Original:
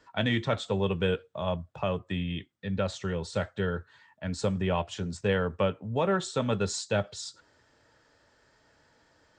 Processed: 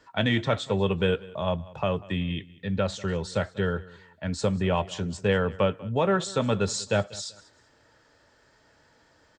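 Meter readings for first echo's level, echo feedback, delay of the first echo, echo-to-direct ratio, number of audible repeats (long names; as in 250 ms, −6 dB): −21.0 dB, 28%, 192 ms, −20.5 dB, 2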